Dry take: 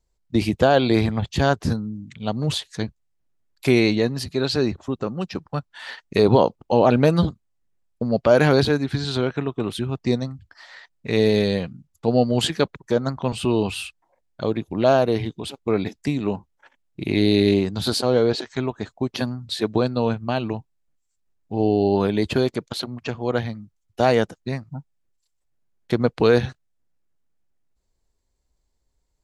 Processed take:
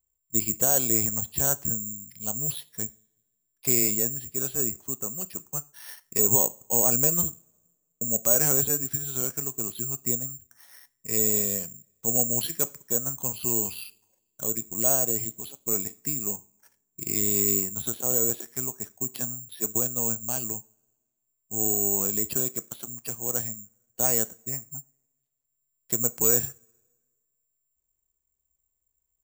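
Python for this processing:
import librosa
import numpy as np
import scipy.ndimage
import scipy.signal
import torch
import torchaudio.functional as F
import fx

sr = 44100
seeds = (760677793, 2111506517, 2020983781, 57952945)

y = fx.rev_double_slope(x, sr, seeds[0], early_s=0.31, late_s=1.5, knee_db=-25, drr_db=12.5)
y = (np.kron(scipy.signal.resample_poly(y, 1, 6), np.eye(6)[0]) * 6)[:len(y)]
y = y * librosa.db_to_amplitude(-14.0)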